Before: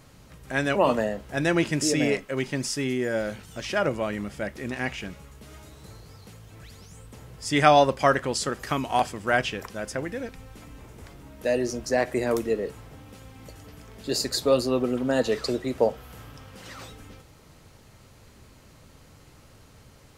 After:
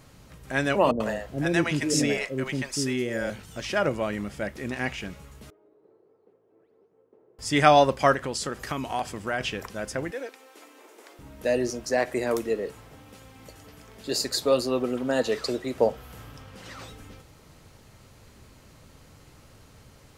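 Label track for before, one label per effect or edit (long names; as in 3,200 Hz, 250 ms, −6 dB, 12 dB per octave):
0.910000	3.300000	multiband delay without the direct sound lows, highs 90 ms, split 560 Hz
5.500000	7.390000	four-pole ladder band-pass 430 Hz, resonance 65%
8.130000	9.410000	downward compressor 2 to 1, threshold −28 dBFS
10.110000	11.190000	Butterworth high-pass 310 Hz
11.700000	15.770000	low-shelf EQ 210 Hz −6.5 dB
16.420000	16.880000	high-shelf EQ 8,500 Hz −5 dB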